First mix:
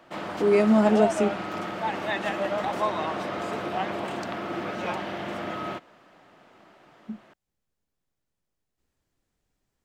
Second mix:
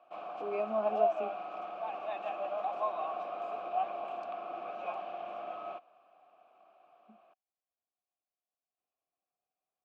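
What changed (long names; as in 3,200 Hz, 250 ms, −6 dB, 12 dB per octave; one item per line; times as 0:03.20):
speech: add high-frequency loss of the air 100 metres
master: add formant filter a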